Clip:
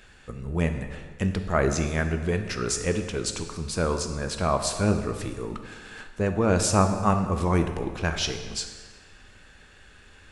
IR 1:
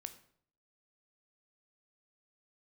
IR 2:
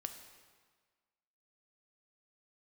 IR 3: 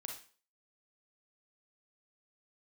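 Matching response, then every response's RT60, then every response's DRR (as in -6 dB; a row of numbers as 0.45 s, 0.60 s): 2; 0.60 s, 1.5 s, 0.40 s; 9.0 dB, 6.0 dB, 1.0 dB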